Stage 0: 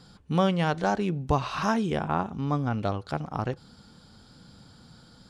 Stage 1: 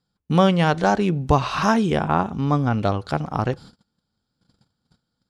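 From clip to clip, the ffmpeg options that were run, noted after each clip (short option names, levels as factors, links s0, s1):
-af "agate=range=0.0282:threshold=0.00447:ratio=16:detection=peak,volume=2.24"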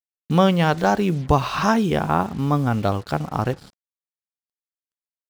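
-af "acrusher=bits=6:mix=0:aa=0.5"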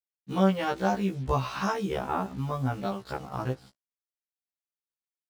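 -af "afftfilt=real='re*1.73*eq(mod(b,3),0)':imag='im*1.73*eq(mod(b,3),0)':win_size=2048:overlap=0.75,volume=0.473"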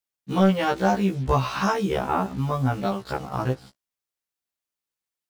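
-af "asoftclip=type=tanh:threshold=0.2,volume=2"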